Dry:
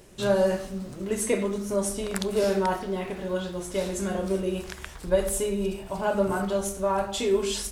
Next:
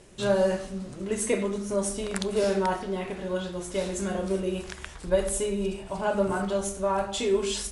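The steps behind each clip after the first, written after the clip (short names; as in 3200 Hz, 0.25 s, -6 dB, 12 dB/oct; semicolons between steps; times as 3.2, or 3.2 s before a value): Chebyshev low-pass 11000 Hz, order 8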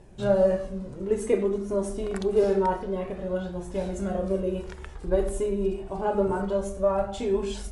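tilt shelf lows +7.5 dB, about 1400 Hz; flange 0.27 Hz, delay 1.1 ms, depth 1.9 ms, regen +42%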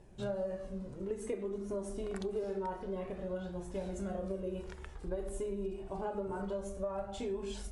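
compressor 6:1, threshold -27 dBFS, peak gain reduction 10.5 dB; gain -7 dB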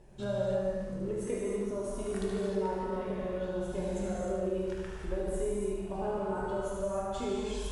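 thinning echo 74 ms, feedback 60%, high-pass 420 Hz, level -6.5 dB; non-linear reverb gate 0.34 s flat, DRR -3 dB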